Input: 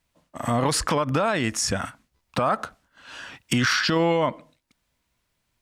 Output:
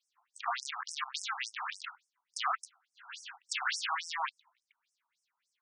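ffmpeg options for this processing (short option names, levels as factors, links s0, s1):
-filter_complex "[0:a]aeval=exprs='0.251*(cos(1*acos(clip(val(0)/0.251,-1,1)))-cos(1*PI/2))+0.0708*(cos(4*acos(clip(val(0)/0.251,-1,1)))-cos(4*PI/2))+0.112*(cos(6*acos(clip(val(0)/0.251,-1,1)))-cos(6*PI/2))':c=same,acrossover=split=610|3800[s0][s1][s2];[s0]acompressor=threshold=0.0447:ratio=4[s3];[s1]acompressor=threshold=0.0447:ratio=4[s4];[s2]acompressor=threshold=0.0158:ratio=4[s5];[s3][s4][s5]amix=inputs=3:normalize=0,afftfilt=real='re*between(b*sr/1024,950*pow(7300/950,0.5+0.5*sin(2*PI*3.5*pts/sr))/1.41,950*pow(7300/950,0.5+0.5*sin(2*PI*3.5*pts/sr))*1.41)':imag='im*between(b*sr/1024,950*pow(7300/950,0.5+0.5*sin(2*PI*3.5*pts/sr))/1.41,950*pow(7300/950,0.5+0.5*sin(2*PI*3.5*pts/sr))*1.41)':win_size=1024:overlap=0.75"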